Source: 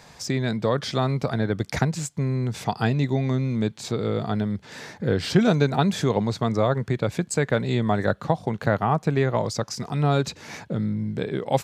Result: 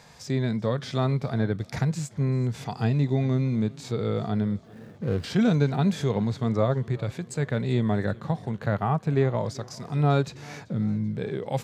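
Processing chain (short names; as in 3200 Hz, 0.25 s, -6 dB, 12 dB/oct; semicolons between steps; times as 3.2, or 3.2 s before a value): 4.62–5.24 median filter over 41 samples; harmonic-percussive split percussive -10 dB; warbling echo 0.388 s, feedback 59%, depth 88 cents, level -23 dB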